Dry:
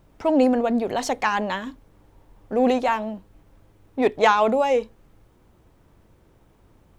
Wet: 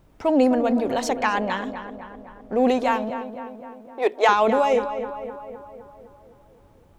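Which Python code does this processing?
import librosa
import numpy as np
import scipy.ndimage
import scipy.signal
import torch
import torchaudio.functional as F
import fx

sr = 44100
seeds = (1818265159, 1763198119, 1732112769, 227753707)

y = fx.high_shelf(x, sr, hz=7800.0, db=-7.0, at=(1.09, 2.59))
y = fx.ellip_highpass(y, sr, hz=330.0, order=4, stop_db=40, at=(3.1, 4.29))
y = fx.echo_filtered(y, sr, ms=256, feedback_pct=61, hz=2500.0, wet_db=-10.0)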